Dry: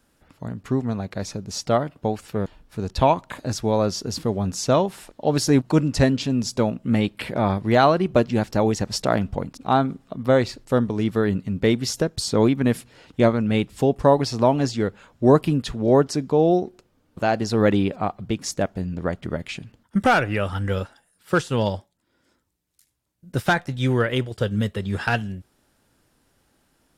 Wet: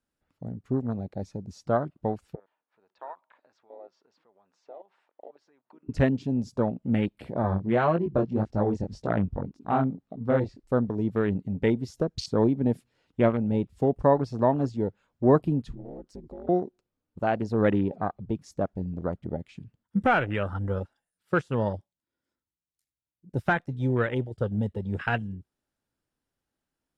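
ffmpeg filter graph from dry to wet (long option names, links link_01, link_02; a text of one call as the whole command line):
ffmpeg -i in.wav -filter_complex "[0:a]asettb=1/sr,asplit=3[link_01][link_02][link_03];[link_01]atrim=end=2.354[link_04];[link_02]atrim=start=2.35:end=5.89,asetpts=PTS-STARTPTS,afade=type=in:duration=0.004:curve=qsin,afade=type=out:start_time=3.536:duration=0.004:curve=qsin,acompressor=threshold=-29dB:ratio=8:attack=3.2:release=140:knee=1:detection=peak,highpass=620,lowpass=2100,equalizer=frequency=920:width_type=o:width=0.28:gain=3[link_05];[link_03]atrim=start=5.886[link_06];[link_04][link_05]acrossfade=duration=0.004:curve1=hsin:curve2=qsin[link_07];[link_07][link_06]acrossfade=duration=0.004:curve1=qsin:curve2=hsin,asettb=1/sr,asplit=3[link_08][link_09][link_10];[link_08]atrim=end=7.424[link_11];[link_09]atrim=start=7.42:end=10.64,asetpts=PTS-STARTPTS,afade=type=in:duration=0.004:curve=qsin,afade=type=out:start_time=3.216:duration=0.004:curve=qsin,lowpass=8100,lowshelf=frequency=410:gain=4,flanger=delay=17.5:depth=5.6:speed=1.8[link_12];[link_10]atrim=start=10.636[link_13];[link_11][link_12]acrossfade=duration=0.004:curve1=hsin:curve2=qsin[link_14];[link_14][link_13]acrossfade=duration=0.004:curve1=qsin:curve2=hsin,asettb=1/sr,asplit=3[link_15][link_16][link_17];[link_15]atrim=end=15.734[link_18];[link_16]atrim=start=15.73:end=16.49,asetpts=PTS-STARTPTS,afade=type=in:duration=0.004:curve=qsin,afade=type=out:start_time=0.756:duration=0.004:curve=qsin,acompressor=threshold=-29dB:ratio=8:attack=3.2:release=140:knee=1:detection=peak,aeval=exprs='clip(val(0),-1,0.0376)':channel_layout=same,aeval=exprs='val(0)*sin(2*PI*99*n/s)':channel_layout=same[link_19];[link_17]atrim=start=16.486[link_20];[link_18][link_19]acrossfade=duration=0.004:curve1=hsin:curve2=qsin[link_21];[link_21][link_20]acrossfade=duration=0.004:curve1=qsin:curve2=hsin,afwtdn=0.0316,highshelf=frequency=10000:gain=-4.5,volume=-4.5dB" out.wav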